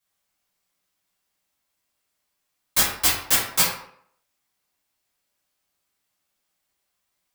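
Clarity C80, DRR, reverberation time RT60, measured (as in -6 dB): 7.5 dB, -9.0 dB, 0.65 s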